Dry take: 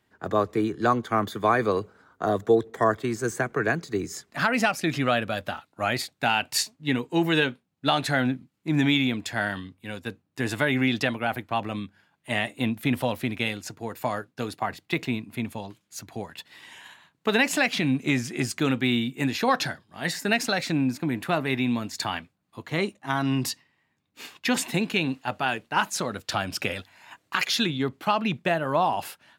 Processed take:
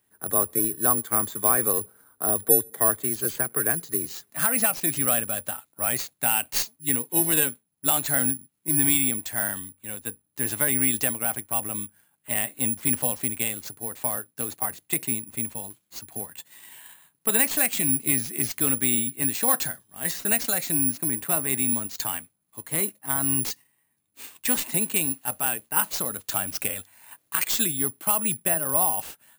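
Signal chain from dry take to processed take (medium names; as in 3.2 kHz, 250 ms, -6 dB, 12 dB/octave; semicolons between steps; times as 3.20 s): tracing distortion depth 0.026 ms; careless resampling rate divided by 4×, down none, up zero stuff; trim -5.5 dB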